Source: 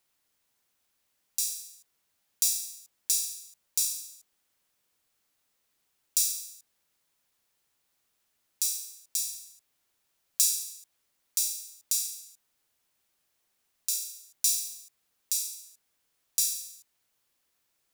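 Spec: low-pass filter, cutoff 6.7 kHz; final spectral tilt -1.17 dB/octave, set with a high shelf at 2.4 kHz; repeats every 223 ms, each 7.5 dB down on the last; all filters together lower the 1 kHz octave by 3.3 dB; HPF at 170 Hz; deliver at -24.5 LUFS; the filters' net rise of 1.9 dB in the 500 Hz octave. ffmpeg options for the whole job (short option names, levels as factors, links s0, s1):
-af "highpass=170,lowpass=6700,equalizer=f=500:t=o:g=4,equalizer=f=1000:t=o:g=-4.5,highshelf=f=2400:g=-4.5,aecho=1:1:223|446|669|892|1115:0.422|0.177|0.0744|0.0312|0.0131,volume=4.73"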